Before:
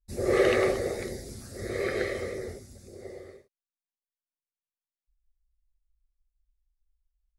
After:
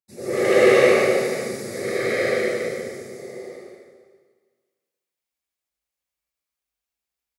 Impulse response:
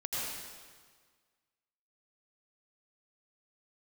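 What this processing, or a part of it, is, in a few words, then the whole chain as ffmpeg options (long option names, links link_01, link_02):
stadium PA: -filter_complex "[0:a]highpass=frequency=130:width=0.5412,highpass=frequency=130:width=1.3066,equalizer=frequency=2300:width_type=o:width=0.2:gain=4,aecho=1:1:145.8|221.6:1|0.891[link_01];[1:a]atrim=start_sample=2205[link_02];[link_01][link_02]afir=irnorm=-1:irlink=0"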